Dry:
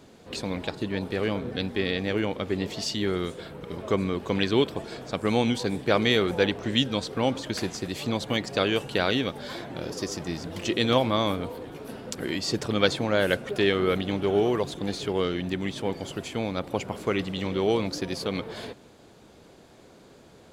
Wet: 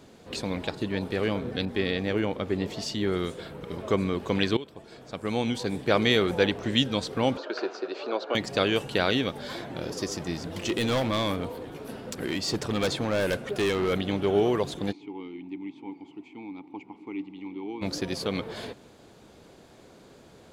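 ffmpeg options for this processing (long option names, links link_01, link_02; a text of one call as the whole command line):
ffmpeg -i in.wav -filter_complex "[0:a]asettb=1/sr,asplit=3[link_01][link_02][link_03];[link_01]atrim=end=1.654[link_04];[link_02]atrim=start=1.65:end=3.12,asetpts=PTS-STARTPTS,afade=type=in:duration=0.004:curve=qsin,afade=type=out:start_time=1.466:duration=0.004:curve=qsin,adynamicequalizer=threshold=0.00562:dfrequency=1800:dqfactor=0.7:tfrequency=1800:tqfactor=0.7:attack=5:release=100:ratio=0.375:range=2:mode=cutabove:tftype=highshelf[link_05];[link_03]atrim=start=3.116[link_06];[link_04][link_05]acrossfade=duration=0.004:curve1=hsin:curve2=qsin[link_07];[link_07][link_06]acrossfade=duration=0.004:curve1=qsin:curve2=hsin,asettb=1/sr,asplit=3[link_08][link_09][link_10];[link_08]atrim=end=7.374[link_11];[link_09]atrim=start=7.37:end=8.35,asetpts=PTS-STARTPTS,afade=type=in:duration=0.004:curve=qsin,afade=type=out:start_time=0.976:duration=0.004:curve=qsin,highpass=frequency=360:width=0.5412,highpass=frequency=360:width=1.3066,equalizer=frequency=380:width_type=q:width=4:gain=6,equalizer=frequency=610:width_type=q:width=4:gain=5,equalizer=frequency=1400:width_type=q:width=4:gain=9,equalizer=frequency=2000:width_type=q:width=4:gain=-9,equalizer=frequency=3300:width_type=q:width=4:gain=-9,lowpass=frequency=4200:width=0.5412,lowpass=frequency=4200:width=1.3066[link_12];[link_10]atrim=start=8.346[link_13];[link_11][link_12]acrossfade=duration=0.004:curve1=hsin:curve2=qsin[link_14];[link_14][link_13]acrossfade=duration=0.004:curve1=qsin:curve2=hsin,asplit=3[link_15][link_16][link_17];[link_15]afade=type=out:start_time=10.49:duration=0.02[link_18];[link_16]volume=22dB,asoftclip=hard,volume=-22dB,afade=type=in:start_time=10.49:duration=0.02,afade=type=out:start_time=13.92:duration=0.02[link_19];[link_17]afade=type=in:start_time=13.92:duration=0.02[link_20];[link_18][link_19][link_20]amix=inputs=3:normalize=0,asplit=3[link_21][link_22][link_23];[link_21]afade=type=out:start_time=14.91:duration=0.02[link_24];[link_22]asplit=3[link_25][link_26][link_27];[link_25]bandpass=frequency=300:width_type=q:width=8,volume=0dB[link_28];[link_26]bandpass=frequency=870:width_type=q:width=8,volume=-6dB[link_29];[link_27]bandpass=frequency=2240:width_type=q:width=8,volume=-9dB[link_30];[link_28][link_29][link_30]amix=inputs=3:normalize=0,afade=type=in:start_time=14.91:duration=0.02,afade=type=out:start_time=17.81:duration=0.02[link_31];[link_23]afade=type=in:start_time=17.81:duration=0.02[link_32];[link_24][link_31][link_32]amix=inputs=3:normalize=0,asplit=2[link_33][link_34];[link_33]atrim=end=4.57,asetpts=PTS-STARTPTS,afade=type=out:start_time=4.566:duration=0.004:curve=hsin:silence=0.112202[link_35];[link_34]atrim=start=4.57,asetpts=PTS-STARTPTS,afade=type=in:duration=1.44:silence=0.112202[link_36];[link_35][link_36]concat=n=2:v=0:a=1" out.wav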